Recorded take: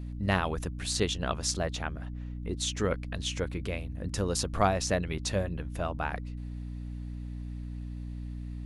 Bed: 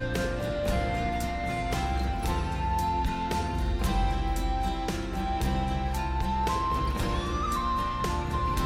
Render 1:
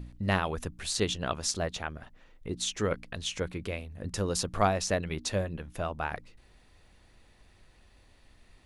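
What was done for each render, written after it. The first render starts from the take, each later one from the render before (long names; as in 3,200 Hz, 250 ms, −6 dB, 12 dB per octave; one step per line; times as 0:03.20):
hum removal 60 Hz, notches 5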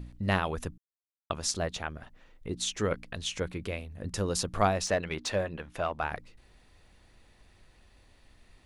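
0:00.78–0:01.30: silence
0:04.86–0:06.03: mid-hump overdrive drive 11 dB, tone 2,800 Hz, clips at −16 dBFS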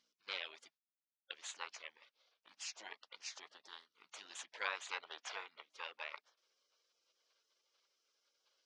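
elliptic band-pass filter 730–5,300 Hz, stop band 70 dB
gate on every frequency bin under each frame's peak −15 dB weak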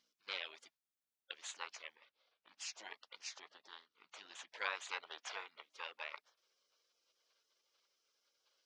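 0:01.95–0:02.58: high-frequency loss of the air 130 metres
0:03.33–0:04.47: high-frequency loss of the air 80 metres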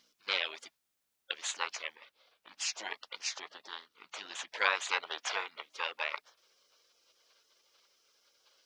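level +11 dB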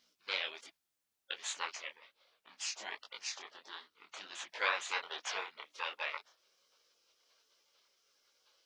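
micro pitch shift up and down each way 46 cents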